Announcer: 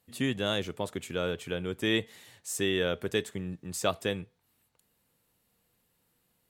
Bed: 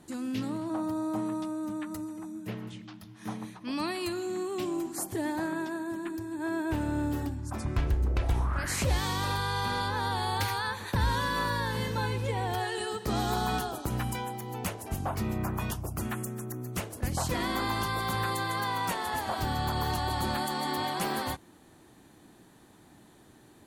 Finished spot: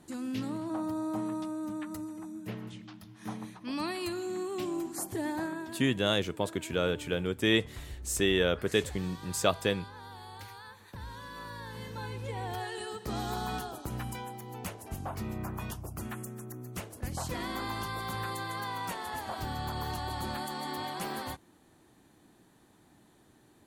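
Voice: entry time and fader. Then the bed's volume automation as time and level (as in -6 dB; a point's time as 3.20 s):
5.60 s, +2.0 dB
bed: 5.42 s -2 dB
6.11 s -16.5 dB
11.10 s -16.5 dB
12.44 s -5.5 dB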